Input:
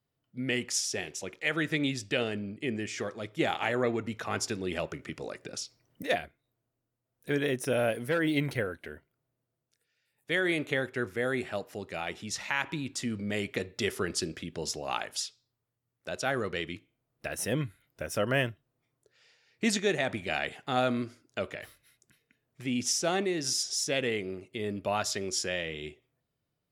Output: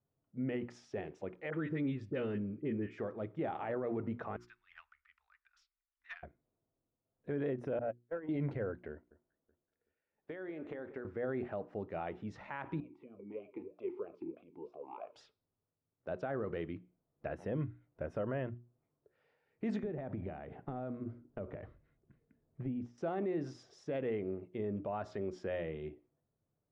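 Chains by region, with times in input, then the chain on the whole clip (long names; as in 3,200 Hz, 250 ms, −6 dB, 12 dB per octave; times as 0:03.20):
0:01.50–0:02.98: parametric band 700 Hz −14 dB 0.36 octaves + all-pass dispersion highs, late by 40 ms, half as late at 1,300 Hz
0:04.36–0:06.23: phase distortion by the signal itself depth 0.051 ms + inverse Chebyshev band-stop filter 100–580 Hz, stop band 50 dB + expander for the loud parts, over −53 dBFS
0:07.79–0:08.29: noise gate −25 dBFS, range −50 dB + mid-hump overdrive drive 19 dB, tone 1,700 Hz, clips at −21 dBFS + high-frequency loss of the air 280 metres
0:08.92–0:11.05: parametric band 130 Hz −14 dB 0.46 octaves + downward compressor 12 to 1, threshold −35 dBFS + delay that swaps between a low-pass and a high-pass 188 ms, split 1,800 Hz, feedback 54%, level −14 dB
0:12.80–0:15.16: transient designer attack +1 dB, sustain +7 dB + formant filter swept between two vowels a-u 3.1 Hz
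0:19.83–0:22.98: downward compressor 8 to 1, threshold −37 dBFS + spectral tilt −2.5 dB per octave
whole clip: low-pass filter 1,000 Hz 12 dB per octave; mains-hum notches 60/120/180/240/300/360 Hz; brickwall limiter −27.5 dBFS; level −1 dB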